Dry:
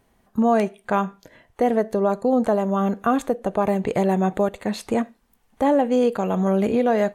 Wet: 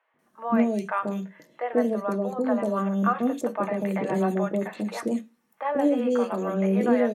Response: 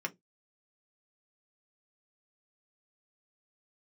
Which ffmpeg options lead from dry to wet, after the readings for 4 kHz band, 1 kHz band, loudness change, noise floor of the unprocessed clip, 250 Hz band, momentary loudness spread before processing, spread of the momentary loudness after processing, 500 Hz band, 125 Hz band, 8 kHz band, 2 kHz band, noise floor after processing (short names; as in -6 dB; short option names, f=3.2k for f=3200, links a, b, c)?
-6.5 dB, -5.5 dB, -4.0 dB, -64 dBFS, -3.0 dB, 5 LU, 8 LU, -5.0 dB, -3.5 dB, -5.0 dB, -2.5 dB, -70 dBFS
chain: -filter_complex "[0:a]highpass=170,flanger=delay=3.9:depth=1:regen=88:speed=1.9:shape=triangular,acrossover=split=610|3100[a][b][c];[a]adelay=140[d];[c]adelay=190[e];[d][b][e]amix=inputs=3:normalize=0,asplit=2[f][g];[1:a]atrim=start_sample=2205,lowshelf=f=180:g=6.5[h];[g][h]afir=irnorm=-1:irlink=0,volume=-1dB[i];[f][i]amix=inputs=2:normalize=0,volume=-3.5dB"